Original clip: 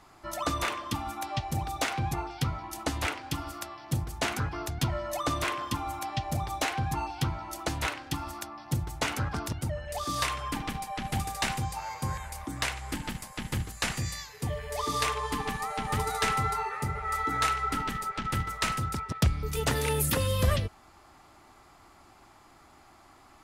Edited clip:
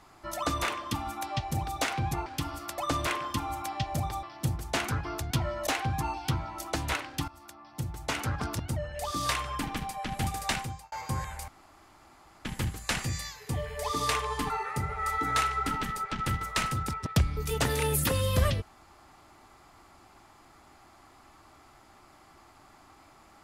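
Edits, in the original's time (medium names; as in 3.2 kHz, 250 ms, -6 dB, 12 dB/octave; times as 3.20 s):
2.26–3.19 s: delete
3.71–5.15 s: move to 6.60 s
8.21–9.29 s: fade in, from -16.5 dB
11.42–11.85 s: fade out linear
12.41–13.38 s: room tone
15.43–16.56 s: delete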